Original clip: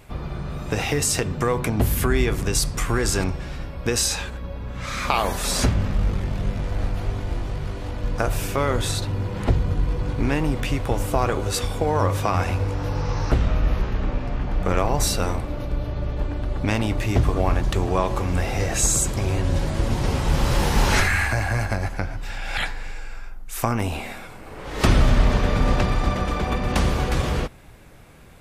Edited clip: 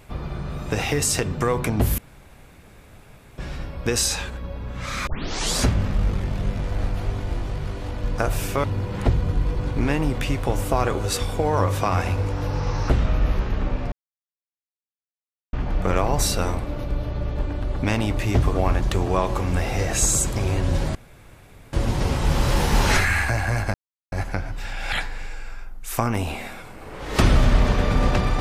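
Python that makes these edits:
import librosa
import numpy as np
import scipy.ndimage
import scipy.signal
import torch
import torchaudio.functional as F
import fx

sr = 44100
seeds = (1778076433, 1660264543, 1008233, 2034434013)

y = fx.edit(x, sr, fx.room_tone_fill(start_s=1.98, length_s=1.4),
    fx.tape_start(start_s=5.07, length_s=0.5),
    fx.cut(start_s=8.64, length_s=0.42),
    fx.insert_silence(at_s=14.34, length_s=1.61),
    fx.insert_room_tone(at_s=19.76, length_s=0.78),
    fx.insert_silence(at_s=21.77, length_s=0.38), tone=tone)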